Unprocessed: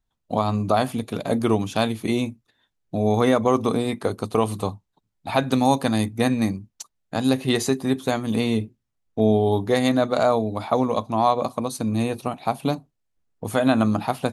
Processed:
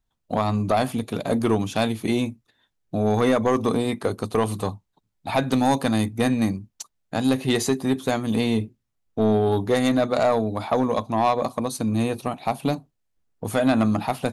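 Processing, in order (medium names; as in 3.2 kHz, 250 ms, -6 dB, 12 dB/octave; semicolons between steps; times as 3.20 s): saturation -12 dBFS, distortion -16 dB; trim +1 dB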